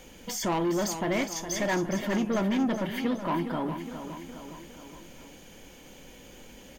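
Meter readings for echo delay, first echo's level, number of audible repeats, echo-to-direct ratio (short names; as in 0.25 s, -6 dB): 0.412 s, -9.5 dB, 4, -8.0 dB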